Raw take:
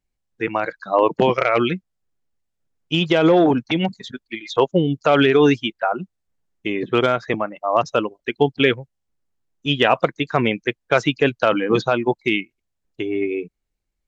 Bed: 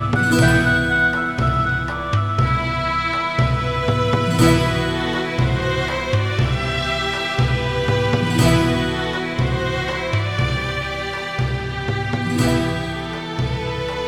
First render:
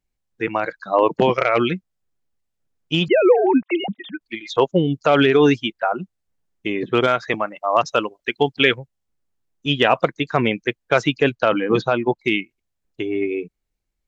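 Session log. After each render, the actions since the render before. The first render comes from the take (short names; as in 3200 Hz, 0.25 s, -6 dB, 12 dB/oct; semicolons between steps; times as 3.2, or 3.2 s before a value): 3.08–4.21 sine-wave speech; 7.07–8.78 tilt shelf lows -4 dB, about 660 Hz; 11.35–12.21 air absorption 72 m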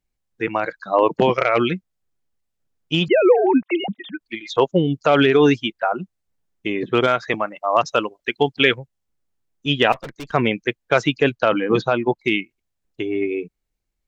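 9.92–10.33 tube stage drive 29 dB, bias 0.7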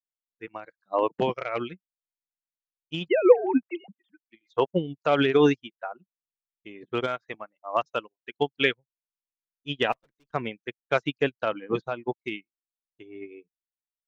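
upward expander 2.5:1, over -34 dBFS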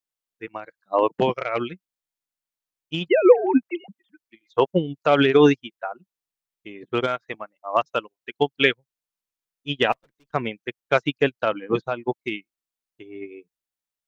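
gain +4.5 dB; limiter -3 dBFS, peak gain reduction 3 dB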